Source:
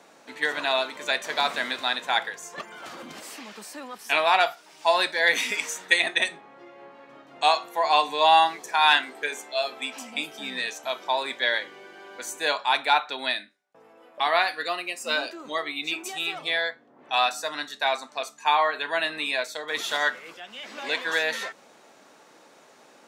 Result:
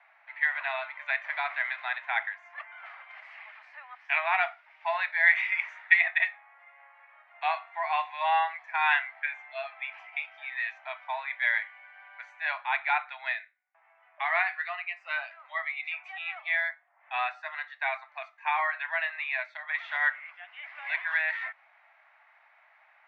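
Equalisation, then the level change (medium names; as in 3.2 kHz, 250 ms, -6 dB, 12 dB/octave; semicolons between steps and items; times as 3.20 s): steep high-pass 650 Hz 72 dB/octave; resonant low-pass 2.1 kHz, resonance Q 4.6; distance through air 140 m; -8.5 dB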